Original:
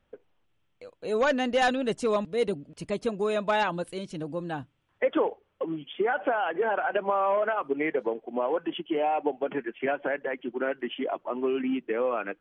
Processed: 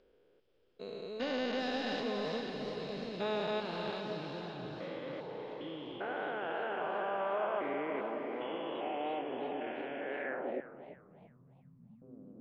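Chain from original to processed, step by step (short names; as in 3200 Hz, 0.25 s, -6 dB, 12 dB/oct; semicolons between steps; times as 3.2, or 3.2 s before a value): stepped spectrum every 0.4 s; bell 5000 Hz +10 dB 0.25 oct; diffused feedback echo 0.534 s, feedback 44%, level -6 dB; low-pass sweep 4300 Hz -> 140 Hz, 10.06–10.92; 10.6–12.02 Chebyshev band-stop 180–990 Hz, order 3; warbling echo 0.339 s, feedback 32%, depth 202 cents, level -13 dB; gain -6 dB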